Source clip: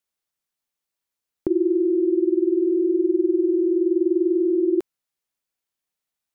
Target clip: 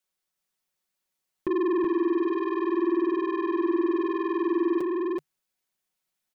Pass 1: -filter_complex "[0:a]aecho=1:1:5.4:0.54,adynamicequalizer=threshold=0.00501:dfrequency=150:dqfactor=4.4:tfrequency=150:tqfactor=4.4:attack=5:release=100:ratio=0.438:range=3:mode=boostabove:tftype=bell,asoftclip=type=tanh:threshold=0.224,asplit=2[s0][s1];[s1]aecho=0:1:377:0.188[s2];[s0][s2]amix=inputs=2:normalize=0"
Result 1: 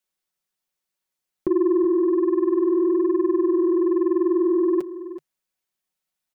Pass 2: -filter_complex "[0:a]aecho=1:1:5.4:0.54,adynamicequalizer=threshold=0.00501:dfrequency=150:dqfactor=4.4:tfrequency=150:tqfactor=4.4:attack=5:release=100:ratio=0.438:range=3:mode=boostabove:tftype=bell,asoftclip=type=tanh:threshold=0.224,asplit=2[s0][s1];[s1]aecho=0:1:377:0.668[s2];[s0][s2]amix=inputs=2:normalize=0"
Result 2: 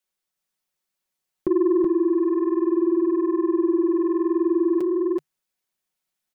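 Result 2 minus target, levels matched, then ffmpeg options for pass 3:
saturation: distortion -9 dB
-filter_complex "[0:a]aecho=1:1:5.4:0.54,adynamicequalizer=threshold=0.00501:dfrequency=150:dqfactor=4.4:tfrequency=150:tqfactor=4.4:attack=5:release=100:ratio=0.438:range=3:mode=boostabove:tftype=bell,asoftclip=type=tanh:threshold=0.0794,asplit=2[s0][s1];[s1]aecho=0:1:377:0.668[s2];[s0][s2]amix=inputs=2:normalize=0"

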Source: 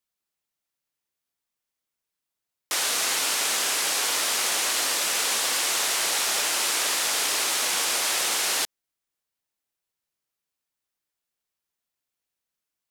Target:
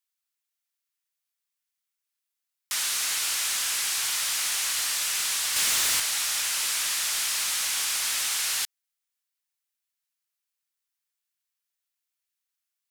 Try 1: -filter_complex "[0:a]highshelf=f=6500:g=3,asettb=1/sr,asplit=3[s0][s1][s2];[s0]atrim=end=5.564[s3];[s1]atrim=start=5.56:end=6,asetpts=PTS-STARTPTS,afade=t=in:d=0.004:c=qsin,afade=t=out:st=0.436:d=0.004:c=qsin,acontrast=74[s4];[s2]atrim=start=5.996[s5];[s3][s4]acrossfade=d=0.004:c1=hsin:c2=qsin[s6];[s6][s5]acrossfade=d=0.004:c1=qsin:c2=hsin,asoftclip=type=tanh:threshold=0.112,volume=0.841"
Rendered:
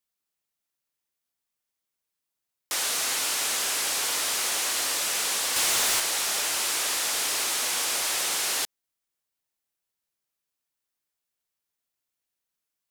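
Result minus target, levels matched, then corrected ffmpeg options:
1 kHz band +4.5 dB
-filter_complex "[0:a]highpass=1300,highshelf=f=6500:g=3,asettb=1/sr,asplit=3[s0][s1][s2];[s0]atrim=end=5.564[s3];[s1]atrim=start=5.56:end=6,asetpts=PTS-STARTPTS,afade=t=in:d=0.004:c=qsin,afade=t=out:st=0.436:d=0.004:c=qsin,acontrast=74[s4];[s2]atrim=start=5.996[s5];[s3][s4]acrossfade=d=0.004:c1=hsin:c2=qsin[s6];[s6][s5]acrossfade=d=0.004:c1=qsin:c2=hsin,asoftclip=type=tanh:threshold=0.112,volume=0.841"

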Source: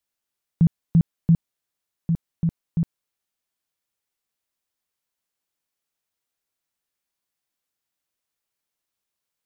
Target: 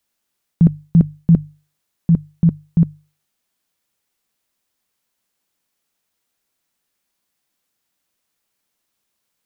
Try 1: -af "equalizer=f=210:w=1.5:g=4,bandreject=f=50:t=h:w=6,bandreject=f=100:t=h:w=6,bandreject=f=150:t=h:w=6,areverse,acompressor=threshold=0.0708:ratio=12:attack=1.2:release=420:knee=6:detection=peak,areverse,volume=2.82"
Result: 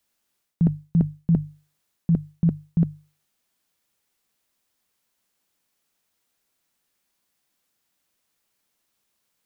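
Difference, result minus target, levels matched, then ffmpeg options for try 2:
compression: peak gain reduction +8 dB
-af "equalizer=f=210:w=1.5:g=4,bandreject=f=50:t=h:w=6,bandreject=f=100:t=h:w=6,bandreject=f=150:t=h:w=6,areverse,acompressor=threshold=0.2:ratio=12:attack=1.2:release=420:knee=6:detection=peak,areverse,volume=2.82"

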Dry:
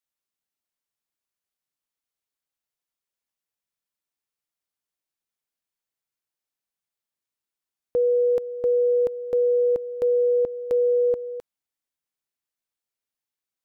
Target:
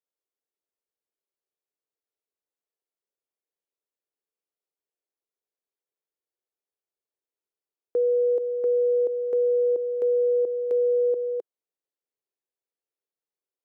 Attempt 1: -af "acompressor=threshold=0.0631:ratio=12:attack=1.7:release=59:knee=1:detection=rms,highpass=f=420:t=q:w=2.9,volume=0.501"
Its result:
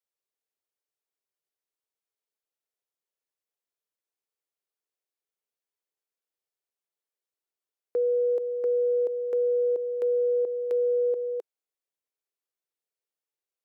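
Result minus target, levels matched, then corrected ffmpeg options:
1 kHz band +3.0 dB
-af "acompressor=threshold=0.0631:ratio=12:attack=1.7:release=59:knee=1:detection=rms,highpass=f=420:t=q:w=2.9,tiltshelf=f=770:g=6,volume=0.501"

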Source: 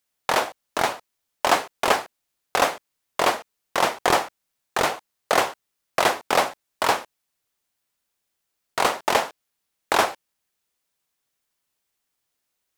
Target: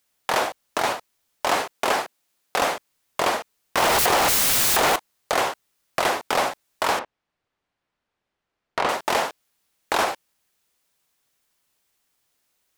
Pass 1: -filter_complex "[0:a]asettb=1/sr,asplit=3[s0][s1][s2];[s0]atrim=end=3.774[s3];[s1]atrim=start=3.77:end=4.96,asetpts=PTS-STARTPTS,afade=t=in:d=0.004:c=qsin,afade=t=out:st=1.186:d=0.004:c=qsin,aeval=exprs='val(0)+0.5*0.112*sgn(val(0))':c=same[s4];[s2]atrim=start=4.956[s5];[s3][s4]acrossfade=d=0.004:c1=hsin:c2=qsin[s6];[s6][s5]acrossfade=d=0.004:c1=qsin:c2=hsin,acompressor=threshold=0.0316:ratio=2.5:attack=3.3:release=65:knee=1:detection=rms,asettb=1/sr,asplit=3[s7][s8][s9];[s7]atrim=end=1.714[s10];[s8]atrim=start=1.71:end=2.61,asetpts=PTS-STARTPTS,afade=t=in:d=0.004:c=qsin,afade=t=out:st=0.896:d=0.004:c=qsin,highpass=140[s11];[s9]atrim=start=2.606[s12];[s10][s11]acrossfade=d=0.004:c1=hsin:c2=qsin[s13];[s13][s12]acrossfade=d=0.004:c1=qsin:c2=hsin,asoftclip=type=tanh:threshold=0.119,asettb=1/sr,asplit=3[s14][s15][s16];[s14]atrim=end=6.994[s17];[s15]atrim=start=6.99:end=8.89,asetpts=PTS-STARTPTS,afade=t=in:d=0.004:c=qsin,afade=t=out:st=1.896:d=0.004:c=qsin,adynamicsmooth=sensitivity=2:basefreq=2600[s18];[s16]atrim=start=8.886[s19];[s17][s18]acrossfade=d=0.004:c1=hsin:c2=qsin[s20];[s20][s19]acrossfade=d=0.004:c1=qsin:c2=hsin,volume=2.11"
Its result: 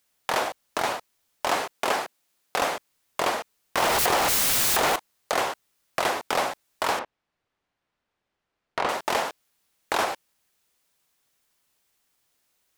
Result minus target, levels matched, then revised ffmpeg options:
compression: peak gain reduction +4 dB
-filter_complex "[0:a]asettb=1/sr,asplit=3[s0][s1][s2];[s0]atrim=end=3.774[s3];[s1]atrim=start=3.77:end=4.96,asetpts=PTS-STARTPTS,afade=t=in:d=0.004:c=qsin,afade=t=out:st=1.186:d=0.004:c=qsin,aeval=exprs='val(0)+0.5*0.112*sgn(val(0))':c=same[s4];[s2]atrim=start=4.956[s5];[s3][s4]acrossfade=d=0.004:c1=hsin:c2=qsin[s6];[s6][s5]acrossfade=d=0.004:c1=qsin:c2=hsin,acompressor=threshold=0.0668:ratio=2.5:attack=3.3:release=65:knee=1:detection=rms,asettb=1/sr,asplit=3[s7][s8][s9];[s7]atrim=end=1.714[s10];[s8]atrim=start=1.71:end=2.61,asetpts=PTS-STARTPTS,afade=t=in:d=0.004:c=qsin,afade=t=out:st=0.896:d=0.004:c=qsin,highpass=140[s11];[s9]atrim=start=2.606[s12];[s10][s11]acrossfade=d=0.004:c1=hsin:c2=qsin[s13];[s13][s12]acrossfade=d=0.004:c1=qsin:c2=hsin,asoftclip=type=tanh:threshold=0.119,asettb=1/sr,asplit=3[s14][s15][s16];[s14]atrim=end=6.994[s17];[s15]atrim=start=6.99:end=8.89,asetpts=PTS-STARTPTS,afade=t=in:d=0.004:c=qsin,afade=t=out:st=1.896:d=0.004:c=qsin,adynamicsmooth=sensitivity=2:basefreq=2600[s18];[s16]atrim=start=8.886[s19];[s17][s18]acrossfade=d=0.004:c1=hsin:c2=qsin[s20];[s20][s19]acrossfade=d=0.004:c1=qsin:c2=hsin,volume=2.11"

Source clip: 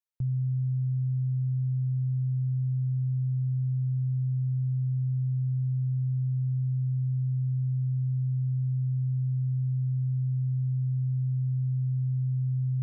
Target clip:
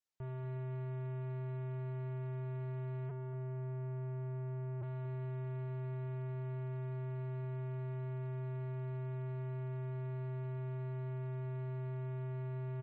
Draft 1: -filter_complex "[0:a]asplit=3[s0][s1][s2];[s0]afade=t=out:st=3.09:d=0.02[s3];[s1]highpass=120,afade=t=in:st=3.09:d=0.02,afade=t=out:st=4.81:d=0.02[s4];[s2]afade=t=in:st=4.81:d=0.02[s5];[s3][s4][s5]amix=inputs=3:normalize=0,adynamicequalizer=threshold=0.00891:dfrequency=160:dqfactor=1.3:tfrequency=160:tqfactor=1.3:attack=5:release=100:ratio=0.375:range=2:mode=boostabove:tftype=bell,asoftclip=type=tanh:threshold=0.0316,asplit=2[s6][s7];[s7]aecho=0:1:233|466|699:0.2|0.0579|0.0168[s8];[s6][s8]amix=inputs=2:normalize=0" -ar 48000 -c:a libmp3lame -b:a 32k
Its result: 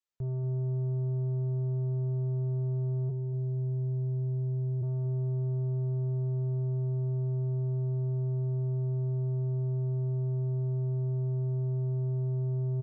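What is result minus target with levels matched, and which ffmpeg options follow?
saturation: distortion -5 dB
-filter_complex "[0:a]asplit=3[s0][s1][s2];[s0]afade=t=out:st=3.09:d=0.02[s3];[s1]highpass=120,afade=t=in:st=3.09:d=0.02,afade=t=out:st=4.81:d=0.02[s4];[s2]afade=t=in:st=4.81:d=0.02[s5];[s3][s4][s5]amix=inputs=3:normalize=0,adynamicequalizer=threshold=0.00891:dfrequency=160:dqfactor=1.3:tfrequency=160:tqfactor=1.3:attack=5:release=100:ratio=0.375:range=2:mode=boostabove:tftype=bell,asoftclip=type=tanh:threshold=0.00891,asplit=2[s6][s7];[s7]aecho=0:1:233|466|699:0.2|0.0579|0.0168[s8];[s6][s8]amix=inputs=2:normalize=0" -ar 48000 -c:a libmp3lame -b:a 32k

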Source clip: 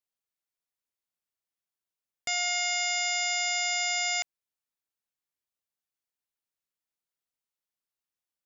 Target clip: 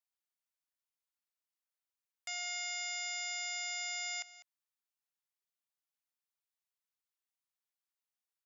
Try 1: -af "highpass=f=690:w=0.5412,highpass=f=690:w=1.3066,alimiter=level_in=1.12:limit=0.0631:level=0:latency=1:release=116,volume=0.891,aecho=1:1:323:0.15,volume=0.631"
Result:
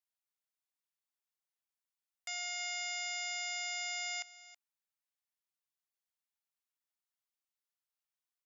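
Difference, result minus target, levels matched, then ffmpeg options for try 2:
echo 123 ms late
-af "highpass=f=690:w=0.5412,highpass=f=690:w=1.3066,alimiter=level_in=1.12:limit=0.0631:level=0:latency=1:release=116,volume=0.891,aecho=1:1:200:0.15,volume=0.631"

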